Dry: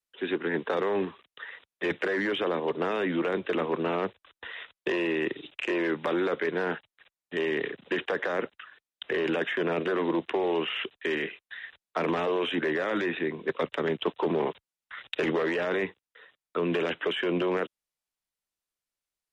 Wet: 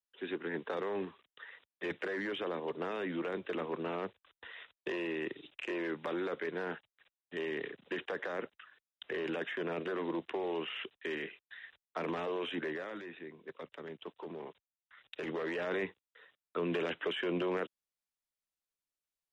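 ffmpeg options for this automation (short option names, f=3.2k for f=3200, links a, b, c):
-af "volume=2dB,afade=t=out:st=12.62:d=0.4:silence=0.375837,afade=t=in:st=15.01:d=0.73:silence=0.281838"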